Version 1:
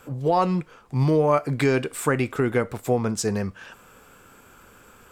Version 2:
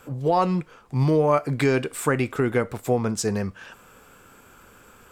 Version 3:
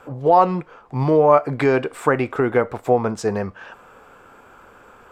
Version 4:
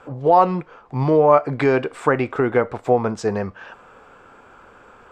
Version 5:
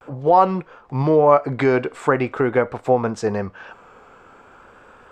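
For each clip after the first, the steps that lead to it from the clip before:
no processing that can be heard
drawn EQ curve 180 Hz 0 dB, 790 Hz +10 dB, 11,000 Hz −10 dB; level −1 dB
low-pass filter 7,200 Hz 12 dB per octave
pitch vibrato 0.44 Hz 50 cents

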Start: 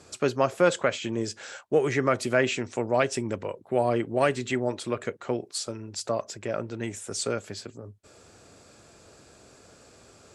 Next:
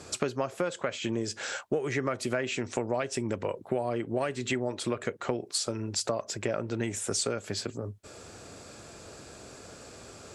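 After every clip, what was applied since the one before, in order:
downward compressor 12 to 1, threshold −32 dBFS, peak gain reduction 17.5 dB
level +6 dB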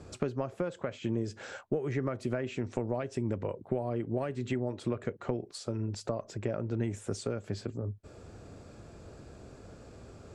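spectral tilt −3 dB per octave
level −6.5 dB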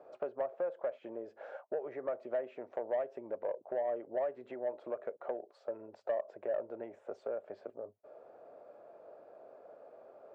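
four-pole ladder band-pass 680 Hz, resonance 60%
soft clipping −33.5 dBFS, distortion −19 dB
level +8 dB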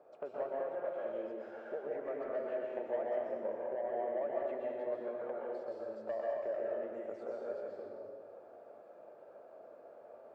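dense smooth reverb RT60 1.7 s, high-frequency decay 0.95×, pre-delay 110 ms, DRR −4.5 dB
level −5 dB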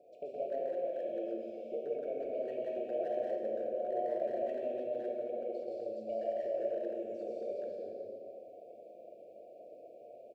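brick-wall band-stop 750–2,200 Hz
far-end echo of a speakerphone 120 ms, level −9 dB
reverb whose tail is shaped and stops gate 470 ms falling, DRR 2.5 dB

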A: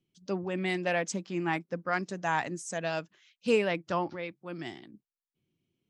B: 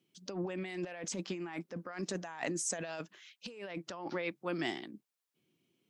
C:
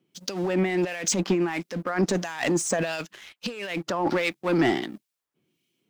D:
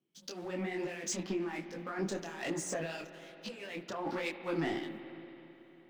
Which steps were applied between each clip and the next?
Bessel high-pass filter 250 Hz, order 2; compressor whose output falls as the input rises −40 dBFS, ratio −1
leveller curve on the samples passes 2; in parallel at −6.5 dB: hard clipping −31 dBFS, distortion −10 dB; on the sum: two-band tremolo in antiphase 1.5 Hz, depth 70%, crossover 1,900 Hz; level +7.5 dB
mains-hum notches 60/120/180 Hz; spring reverb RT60 3.9 s, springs 55 ms, chirp 20 ms, DRR 10 dB; micro pitch shift up and down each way 40 cents; level −8 dB

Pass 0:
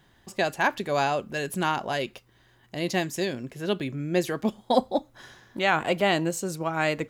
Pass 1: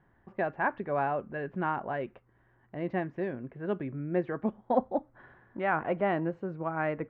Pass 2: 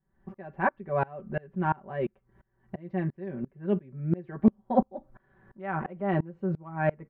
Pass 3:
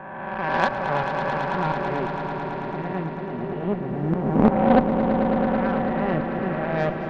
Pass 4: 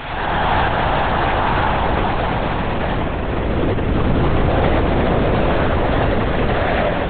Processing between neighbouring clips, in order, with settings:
low-pass filter 1,800 Hz 24 dB per octave; level −4.5 dB
low-shelf EQ 290 Hz +10.5 dB; comb filter 5.2 ms, depth 79%; tremolo with a ramp in dB swelling 2.9 Hz, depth 28 dB; level +2.5 dB
peak hold with a rise ahead of every peak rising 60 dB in 2.14 s; harmonic generator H 3 −14 dB, 8 −29 dB, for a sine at −6.5 dBFS; echo that builds up and dies away 110 ms, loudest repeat 5, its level −10 dB; level +4.5 dB
peak hold with a rise ahead of every peak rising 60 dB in 2.10 s; fuzz pedal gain 27 dB, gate −30 dBFS; linear-prediction vocoder at 8 kHz whisper

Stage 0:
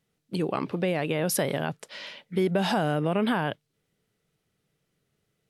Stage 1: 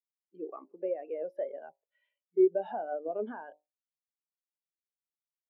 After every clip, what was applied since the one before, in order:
three-way crossover with the lows and the highs turned down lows −23 dB, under 280 Hz, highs −15 dB, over 3,700 Hz
hum removal 50.1 Hz, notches 21
every bin expanded away from the loudest bin 2.5 to 1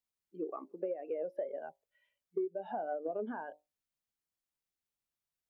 low-shelf EQ 170 Hz +10 dB
downward compressor 10 to 1, threshold −35 dBFS, peak gain reduction 18 dB
level +2 dB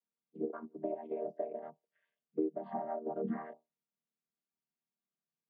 channel vocoder with a chord as carrier major triad, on D#3
level +1 dB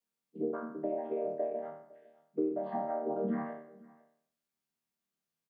peak hold with a decay on every bin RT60 0.62 s
in parallel at −3 dB: brickwall limiter −29.5 dBFS, peak gain reduction 8.5 dB
on the sum: single-tap delay 507 ms −23 dB
level −2 dB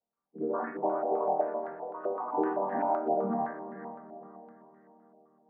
feedback delay with all-pass diffusion 453 ms, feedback 43%, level −11 dB
delay with pitch and tempo change per echo 163 ms, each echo +4 semitones, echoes 2, each echo −6 dB
low-pass on a step sequencer 7.8 Hz 720–1,700 Hz

